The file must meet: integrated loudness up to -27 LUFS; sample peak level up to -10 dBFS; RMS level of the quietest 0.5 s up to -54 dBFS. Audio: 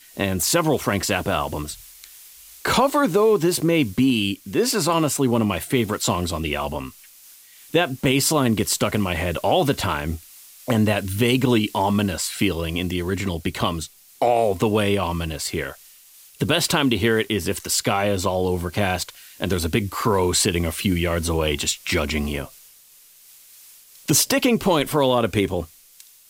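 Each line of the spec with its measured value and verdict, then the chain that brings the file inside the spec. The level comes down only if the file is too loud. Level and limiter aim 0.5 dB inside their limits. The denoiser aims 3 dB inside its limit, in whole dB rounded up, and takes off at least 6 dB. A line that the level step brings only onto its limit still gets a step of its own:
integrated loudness -21.5 LUFS: fail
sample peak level -5.0 dBFS: fail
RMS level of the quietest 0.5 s -51 dBFS: fail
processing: trim -6 dB

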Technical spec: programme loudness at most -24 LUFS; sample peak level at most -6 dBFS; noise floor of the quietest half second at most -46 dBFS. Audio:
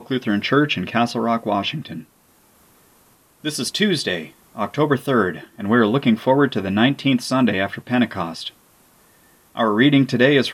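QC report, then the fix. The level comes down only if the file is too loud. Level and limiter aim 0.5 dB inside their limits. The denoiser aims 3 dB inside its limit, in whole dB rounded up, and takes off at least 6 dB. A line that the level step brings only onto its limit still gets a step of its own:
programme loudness -19.5 LUFS: fail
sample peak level -2.0 dBFS: fail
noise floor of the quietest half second -56 dBFS: pass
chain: trim -5 dB

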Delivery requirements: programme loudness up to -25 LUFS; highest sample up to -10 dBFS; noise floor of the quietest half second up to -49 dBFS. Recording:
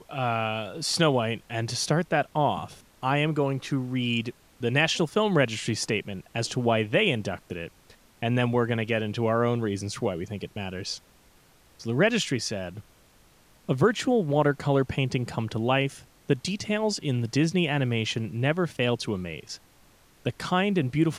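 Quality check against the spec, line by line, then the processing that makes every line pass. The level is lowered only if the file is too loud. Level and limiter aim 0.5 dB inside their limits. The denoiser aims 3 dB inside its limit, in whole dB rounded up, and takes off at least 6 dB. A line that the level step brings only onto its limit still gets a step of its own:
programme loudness -26.5 LUFS: pass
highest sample -7.5 dBFS: fail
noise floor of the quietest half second -58 dBFS: pass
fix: peak limiter -10.5 dBFS

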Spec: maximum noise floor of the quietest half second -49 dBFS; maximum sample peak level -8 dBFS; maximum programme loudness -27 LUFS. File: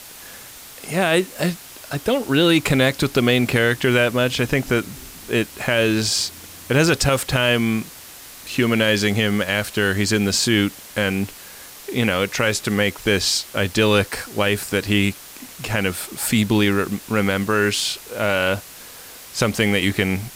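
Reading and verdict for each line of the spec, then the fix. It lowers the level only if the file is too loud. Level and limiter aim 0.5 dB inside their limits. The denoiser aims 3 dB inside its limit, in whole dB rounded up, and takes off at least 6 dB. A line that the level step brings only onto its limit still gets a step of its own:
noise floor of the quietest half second -40 dBFS: fail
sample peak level -5.5 dBFS: fail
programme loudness -19.5 LUFS: fail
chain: noise reduction 6 dB, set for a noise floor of -40 dBFS; trim -8 dB

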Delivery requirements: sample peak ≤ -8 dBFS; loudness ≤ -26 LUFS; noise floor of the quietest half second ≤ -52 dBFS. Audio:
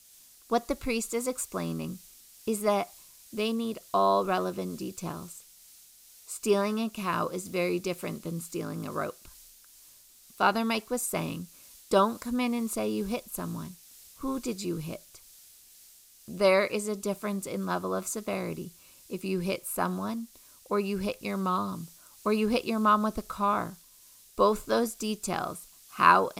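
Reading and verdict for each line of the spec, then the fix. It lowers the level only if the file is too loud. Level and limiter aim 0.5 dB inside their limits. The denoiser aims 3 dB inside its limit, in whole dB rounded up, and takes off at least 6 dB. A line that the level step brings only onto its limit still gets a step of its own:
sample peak -5.5 dBFS: fail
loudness -30.0 LUFS: pass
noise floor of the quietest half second -56 dBFS: pass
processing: peak limiter -8.5 dBFS

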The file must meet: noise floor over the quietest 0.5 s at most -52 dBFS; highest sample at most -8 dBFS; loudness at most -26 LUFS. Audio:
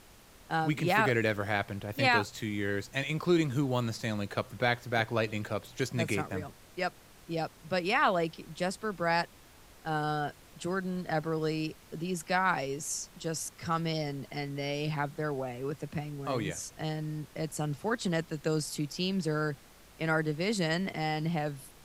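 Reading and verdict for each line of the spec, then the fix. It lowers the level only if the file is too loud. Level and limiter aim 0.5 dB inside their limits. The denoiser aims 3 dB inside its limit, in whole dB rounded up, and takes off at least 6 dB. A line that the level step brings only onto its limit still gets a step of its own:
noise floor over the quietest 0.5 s -56 dBFS: pass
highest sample -12.0 dBFS: pass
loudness -32.0 LUFS: pass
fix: none needed

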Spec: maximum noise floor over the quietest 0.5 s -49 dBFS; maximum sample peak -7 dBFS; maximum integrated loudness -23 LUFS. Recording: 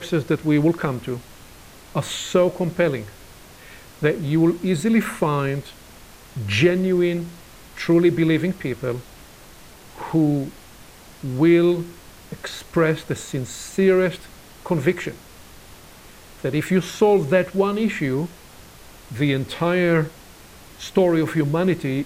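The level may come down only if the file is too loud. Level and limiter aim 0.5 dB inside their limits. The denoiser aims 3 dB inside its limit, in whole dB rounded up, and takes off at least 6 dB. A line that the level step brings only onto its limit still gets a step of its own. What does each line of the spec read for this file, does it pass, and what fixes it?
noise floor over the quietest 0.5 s -44 dBFS: fail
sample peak -4.5 dBFS: fail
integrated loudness -21.0 LUFS: fail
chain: noise reduction 6 dB, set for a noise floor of -44 dBFS; trim -2.5 dB; peak limiter -7.5 dBFS

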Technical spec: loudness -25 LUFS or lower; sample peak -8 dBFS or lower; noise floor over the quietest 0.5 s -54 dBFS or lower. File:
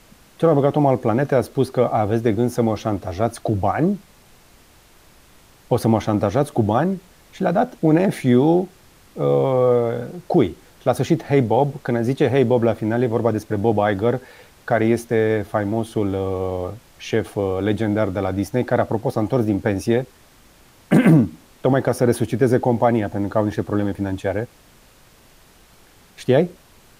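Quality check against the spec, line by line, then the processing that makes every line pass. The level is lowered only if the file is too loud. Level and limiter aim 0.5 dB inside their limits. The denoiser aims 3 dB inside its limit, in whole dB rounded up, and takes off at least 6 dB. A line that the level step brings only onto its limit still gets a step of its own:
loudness -20.0 LUFS: fail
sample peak -4.5 dBFS: fail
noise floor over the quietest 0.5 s -51 dBFS: fail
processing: trim -5.5 dB

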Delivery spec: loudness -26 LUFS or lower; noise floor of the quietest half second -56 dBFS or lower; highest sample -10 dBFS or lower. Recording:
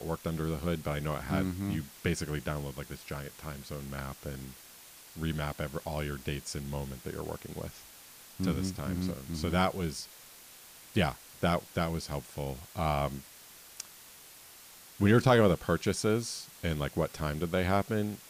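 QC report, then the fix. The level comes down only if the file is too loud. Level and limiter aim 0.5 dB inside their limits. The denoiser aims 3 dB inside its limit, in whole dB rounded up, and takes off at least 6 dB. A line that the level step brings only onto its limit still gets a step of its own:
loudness -32.5 LUFS: pass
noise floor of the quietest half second -53 dBFS: fail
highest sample -13.5 dBFS: pass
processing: noise reduction 6 dB, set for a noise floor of -53 dBFS

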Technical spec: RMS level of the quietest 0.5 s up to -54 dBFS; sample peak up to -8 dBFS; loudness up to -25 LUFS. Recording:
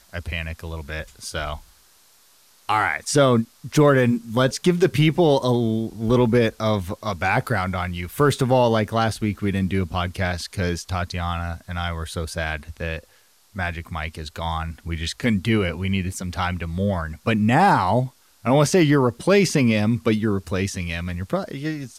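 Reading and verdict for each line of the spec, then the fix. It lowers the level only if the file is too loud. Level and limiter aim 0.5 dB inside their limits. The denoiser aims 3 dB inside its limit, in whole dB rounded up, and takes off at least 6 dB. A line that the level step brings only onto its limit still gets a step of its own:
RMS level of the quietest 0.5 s -56 dBFS: pass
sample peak -6.5 dBFS: fail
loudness -22.0 LUFS: fail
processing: trim -3.5 dB

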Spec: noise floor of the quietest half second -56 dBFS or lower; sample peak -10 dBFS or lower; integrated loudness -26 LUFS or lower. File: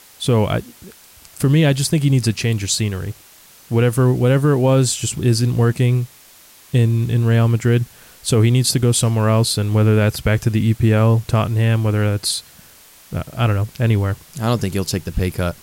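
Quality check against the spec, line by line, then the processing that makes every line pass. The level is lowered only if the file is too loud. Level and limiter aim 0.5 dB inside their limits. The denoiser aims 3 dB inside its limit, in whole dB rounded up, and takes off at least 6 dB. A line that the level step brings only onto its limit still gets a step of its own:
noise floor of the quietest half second -46 dBFS: fail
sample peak -5.5 dBFS: fail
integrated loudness -17.5 LUFS: fail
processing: noise reduction 6 dB, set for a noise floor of -46 dBFS; trim -9 dB

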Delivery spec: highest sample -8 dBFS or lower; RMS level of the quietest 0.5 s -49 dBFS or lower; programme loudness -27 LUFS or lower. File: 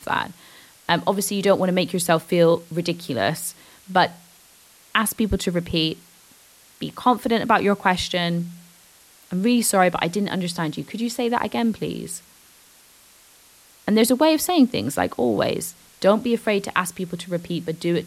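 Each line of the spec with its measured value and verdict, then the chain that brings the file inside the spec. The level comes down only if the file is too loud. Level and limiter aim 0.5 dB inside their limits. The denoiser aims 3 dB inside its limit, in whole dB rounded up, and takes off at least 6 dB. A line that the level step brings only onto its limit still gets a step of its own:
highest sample -4.5 dBFS: fail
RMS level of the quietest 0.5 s -52 dBFS: pass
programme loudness -21.5 LUFS: fail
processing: trim -6 dB

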